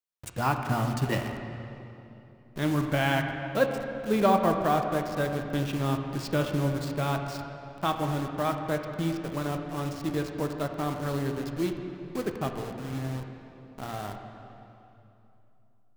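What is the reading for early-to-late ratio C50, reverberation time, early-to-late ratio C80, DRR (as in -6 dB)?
5.5 dB, 2.9 s, 6.0 dB, 4.0 dB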